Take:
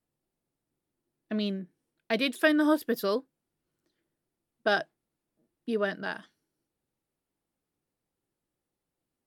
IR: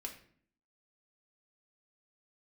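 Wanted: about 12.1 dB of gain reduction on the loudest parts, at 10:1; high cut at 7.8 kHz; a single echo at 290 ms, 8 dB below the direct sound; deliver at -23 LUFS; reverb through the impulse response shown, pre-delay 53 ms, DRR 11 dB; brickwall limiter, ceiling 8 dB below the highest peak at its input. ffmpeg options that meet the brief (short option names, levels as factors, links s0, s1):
-filter_complex "[0:a]lowpass=7800,acompressor=threshold=0.0282:ratio=10,alimiter=level_in=1.41:limit=0.0631:level=0:latency=1,volume=0.708,aecho=1:1:290:0.398,asplit=2[s0][s1];[1:a]atrim=start_sample=2205,adelay=53[s2];[s1][s2]afir=irnorm=-1:irlink=0,volume=0.376[s3];[s0][s3]amix=inputs=2:normalize=0,volume=5.96"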